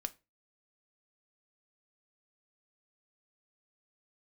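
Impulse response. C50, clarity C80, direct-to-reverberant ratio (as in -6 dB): 22.0 dB, 29.5 dB, 9.5 dB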